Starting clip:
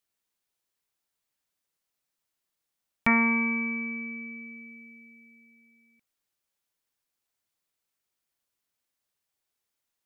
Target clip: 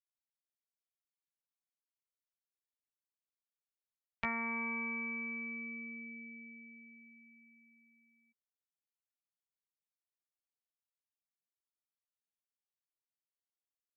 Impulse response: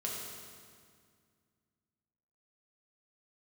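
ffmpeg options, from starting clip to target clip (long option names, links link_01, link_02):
-filter_complex "[0:a]afftdn=noise_reduction=18:noise_floor=-53,acrossover=split=400|1300[link_01][link_02][link_03];[link_01]acompressor=threshold=-42dB:ratio=4[link_04];[link_02]acompressor=threshold=-35dB:ratio=4[link_05];[link_03]acompressor=threshold=-34dB:ratio=4[link_06];[link_04][link_05][link_06]amix=inputs=3:normalize=0,atempo=0.72,volume=-6dB"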